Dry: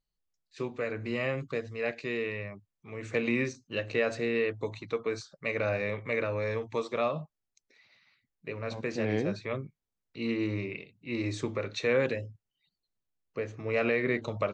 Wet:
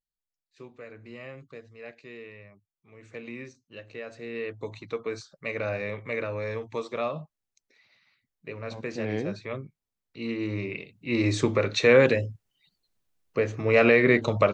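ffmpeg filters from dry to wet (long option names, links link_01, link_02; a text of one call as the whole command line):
ffmpeg -i in.wav -af "volume=9dB,afade=type=in:start_time=4.15:duration=0.62:silence=0.298538,afade=type=in:start_time=10.4:duration=1.01:silence=0.334965" out.wav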